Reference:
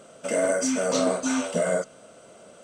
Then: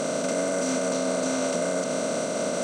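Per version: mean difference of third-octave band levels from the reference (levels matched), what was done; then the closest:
10.5 dB: compressor on every frequency bin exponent 0.2
parametric band 340 Hz +3 dB 1.7 octaves
brickwall limiter −11.5 dBFS, peak gain reduction 6 dB
level −5.5 dB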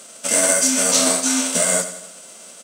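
7.5 dB: spectral envelope flattened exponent 0.6
high-pass filter 190 Hz 24 dB per octave
parametric band 8,900 Hz +12 dB 2.1 octaves
on a send: repeating echo 88 ms, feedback 53%, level −12 dB
on the sum: level +1.5 dB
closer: second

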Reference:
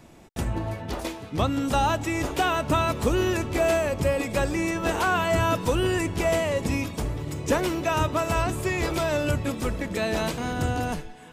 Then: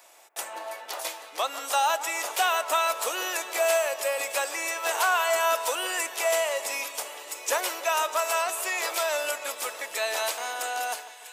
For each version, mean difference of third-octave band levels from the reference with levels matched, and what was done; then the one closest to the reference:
13.5 dB: high-pass filter 600 Hz 24 dB per octave
high-shelf EQ 6,300 Hz +11.5 dB
on a send: echo with a time of its own for lows and highs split 2,100 Hz, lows 147 ms, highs 648 ms, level −13.5 dB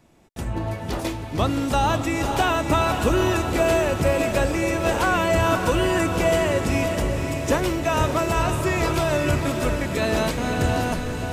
3.0 dB: automatic gain control gain up to 11.5 dB
on a send: feedback delay with all-pass diffusion 533 ms, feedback 55%, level −6 dB
on the sum: level −7.5 dB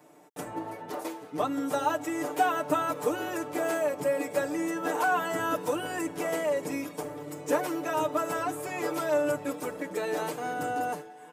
5.0 dB: high-pass filter 390 Hz 12 dB per octave
parametric band 3,600 Hz −11.5 dB 2.3 octaves
comb filter 6.7 ms, depth 99%
level −2 dB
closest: second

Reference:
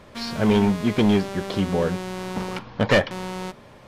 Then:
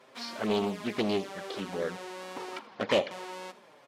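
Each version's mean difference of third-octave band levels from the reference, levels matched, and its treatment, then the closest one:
4.5 dB: flanger swept by the level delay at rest 8.4 ms, full sweep at −15.5 dBFS
high-pass filter 350 Hz 12 dB per octave
on a send: repeating echo 80 ms, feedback 43%, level −18.5 dB
on the sum: highs frequency-modulated by the lows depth 0.28 ms
level −4 dB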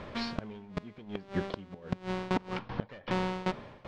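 10.5 dB: low-pass filter 3,900 Hz 12 dB per octave
in parallel at −3 dB: brickwall limiter −23.5 dBFS, peak gain reduction 12 dB
on the sum: shaped tremolo saw down 2.6 Hz, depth 90%
gate with flip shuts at −18 dBFS, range −25 dB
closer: first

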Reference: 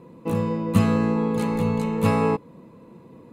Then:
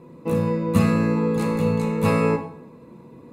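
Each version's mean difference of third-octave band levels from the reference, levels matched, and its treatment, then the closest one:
2.0 dB: notch filter 3,100 Hz, Q 12
dense smooth reverb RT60 0.64 s, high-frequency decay 0.85×, DRR 3.5 dB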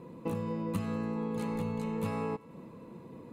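4.0 dB: downward compressor 6 to 1, threshold −30 dBFS, peak gain reduction 16.5 dB
on a send: feedback echo with a high-pass in the loop 96 ms, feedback 77%, level −23 dB
on the sum: level −1.5 dB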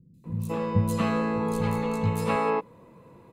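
7.0 dB: parametric band 270 Hz −6 dB 1.4 octaves
three-band delay without the direct sound lows, highs, mids 140/240 ms, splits 220/4,300 Hz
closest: first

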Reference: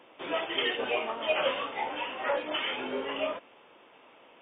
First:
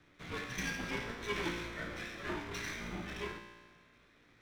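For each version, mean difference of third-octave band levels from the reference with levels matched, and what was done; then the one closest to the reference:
12.5 dB: lower of the sound and its delayed copy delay 0.48 ms
frequency shifter −210 Hz
tuned comb filter 58 Hz, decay 1.5 s, harmonics all, mix 80%
level +4 dB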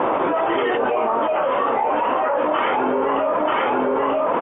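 6.5 dB: low-pass with resonance 1,100 Hz, resonance Q 1.6
on a send: single-tap delay 936 ms −9.5 dB
on the sum: envelope flattener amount 100%
level +2.5 dB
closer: second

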